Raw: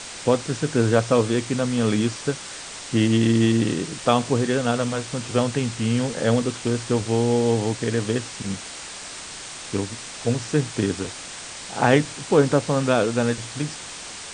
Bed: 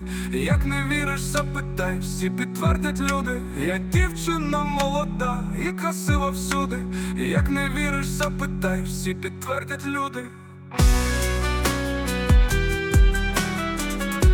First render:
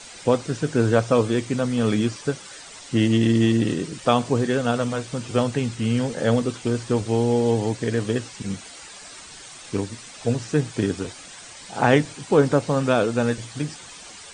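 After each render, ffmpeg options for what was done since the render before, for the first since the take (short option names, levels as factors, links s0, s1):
-af "afftdn=nr=10:nf=-37"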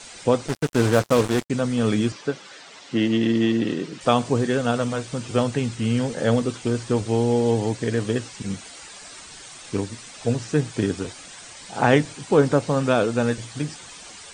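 -filter_complex "[0:a]asettb=1/sr,asplit=3[s0][s1][s2];[s0]atrim=end=0.484[s3];[s1]atrim=start=0.48:end=1.5,asetpts=PTS-STARTPTS,afade=t=in:d=0.004:c=qsin,afade=t=out:st=1.016:d=0.004:c=qsin,acrusher=bits=3:mix=0:aa=0.5[s4];[s2]atrim=start=1.496[s5];[s3][s4]acrossfade=d=0.004:c1=hsin:c2=qsin[s6];[s6][s5]acrossfade=d=0.004:c1=qsin:c2=hsin,asettb=1/sr,asplit=3[s7][s8][s9];[s7]atrim=end=2.124[s10];[s8]atrim=start=2.12:end=4.01,asetpts=PTS-STARTPTS,afade=t=in:d=0.004:c=qsin,afade=t=out:st=1.886:d=0.004:c=qsin,highpass=180,lowpass=4800[s11];[s9]atrim=start=4.006[s12];[s10][s11]acrossfade=d=0.004:c1=hsin:c2=qsin[s13];[s13][s12]acrossfade=d=0.004:c1=qsin:c2=hsin"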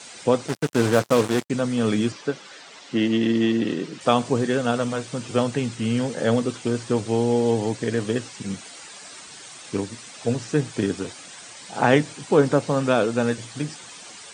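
-af "highpass=120"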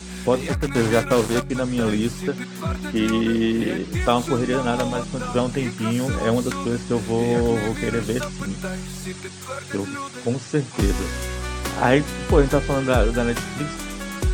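-filter_complex "[1:a]volume=0.531[s0];[0:a][s0]amix=inputs=2:normalize=0"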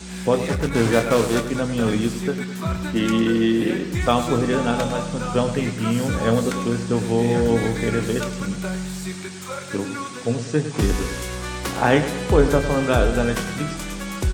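-filter_complex "[0:a]asplit=2[s0][s1];[s1]adelay=26,volume=0.282[s2];[s0][s2]amix=inputs=2:normalize=0,asplit=2[s3][s4];[s4]aecho=0:1:103|206|309|412|515|618:0.282|0.147|0.0762|0.0396|0.0206|0.0107[s5];[s3][s5]amix=inputs=2:normalize=0"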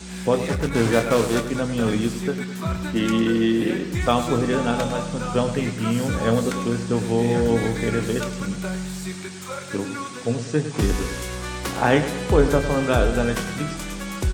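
-af "volume=0.891"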